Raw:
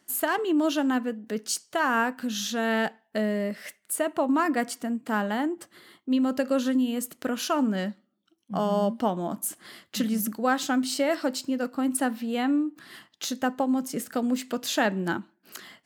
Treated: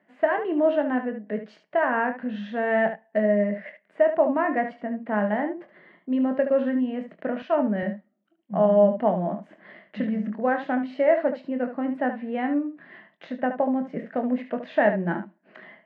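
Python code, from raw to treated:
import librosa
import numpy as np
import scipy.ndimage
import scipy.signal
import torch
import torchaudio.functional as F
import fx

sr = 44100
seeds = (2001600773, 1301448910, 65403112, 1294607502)

y = fx.cabinet(x, sr, low_hz=170.0, low_slope=12, high_hz=2200.0, hz=(180.0, 300.0, 620.0, 1300.0, 1900.0), db=(8, -3, 10, -7, 5))
y = fx.room_early_taps(y, sr, ms=(24, 73), db=(-8.5, -9.5))
y = fx.band_widen(y, sr, depth_pct=40, at=(7.42, 7.83))
y = y * 10.0 ** (-1.0 / 20.0)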